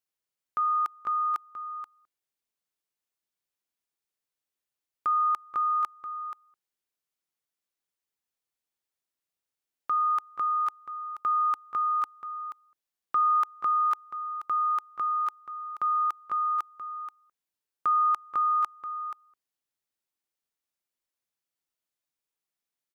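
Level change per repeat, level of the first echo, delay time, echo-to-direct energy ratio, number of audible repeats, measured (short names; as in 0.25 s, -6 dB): no steady repeat, -11.5 dB, 0.481 s, -11.5 dB, 1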